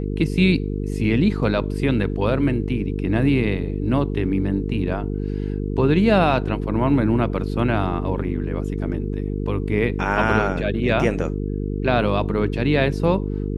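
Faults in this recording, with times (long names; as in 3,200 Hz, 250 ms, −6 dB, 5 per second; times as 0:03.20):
mains buzz 50 Hz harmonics 9 −25 dBFS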